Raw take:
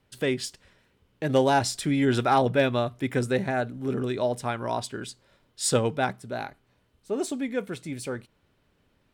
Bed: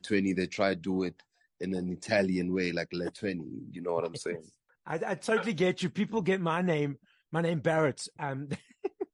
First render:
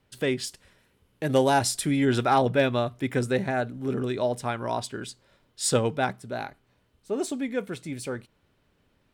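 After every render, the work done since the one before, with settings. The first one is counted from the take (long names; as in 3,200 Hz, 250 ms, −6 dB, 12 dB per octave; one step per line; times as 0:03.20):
0:00.47–0:01.97: parametric band 11,000 Hz +9 dB 0.72 octaves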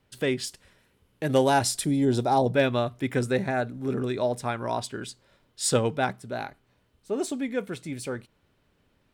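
0:01.84–0:02.55: flat-topped bell 1,900 Hz −12.5 dB
0:03.29–0:04.76: notch filter 3,000 Hz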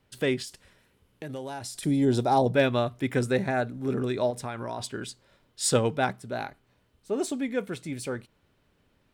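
0:00.42–0:01.83: downward compressor 4 to 1, threshold −36 dBFS
0:04.30–0:04.80: downward compressor 4 to 1, threshold −30 dBFS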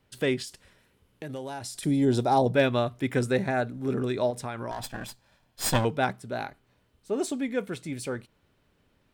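0:04.71–0:05.85: lower of the sound and its delayed copy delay 1.2 ms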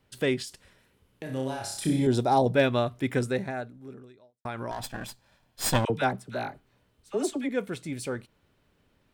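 0:01.23–0:02.07: flutter between parallel walls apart 5.2 metres, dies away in 0.57 s
0:03.12–0:04.45: fade out quadratic
0:05.85–0:07.49: all-pass dispersion lows, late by 47 ms, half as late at 870 Hz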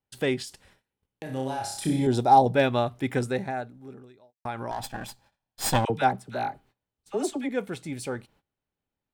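noise gate −59 dBFS, range −21 dB
parametric band 810 Hz +8.5 dB 0.21 octaves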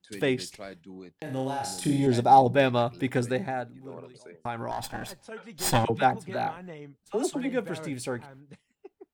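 mix in bed −14 dB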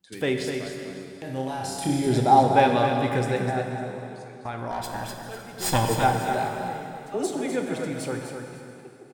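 on a send: multi-tap delay 252/553 ms −7.5/−20 dB
on the sum: dense smooth reverb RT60 2.8 s, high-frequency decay 0.9×, DRR 3.5 dB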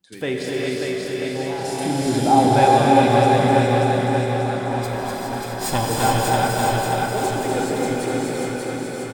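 on a send: repeating echo 587 ms, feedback 54%, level −3 dB
on the sum: reverb whose tail is shaped and stops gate 440 ms rising, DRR −1.5 dB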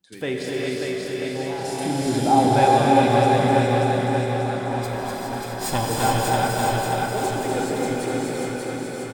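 level −2 dB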